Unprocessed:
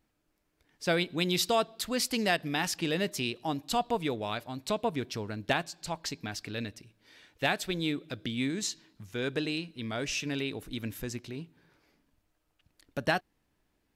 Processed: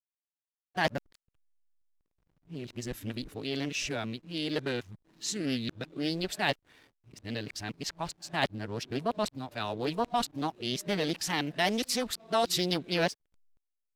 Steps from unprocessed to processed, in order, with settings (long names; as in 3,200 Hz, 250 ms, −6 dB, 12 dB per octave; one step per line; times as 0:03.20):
played backwards from end to start
slack as between gear wheels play −52 dBFS
highs frequency-modulated by the lows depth 0.32 ms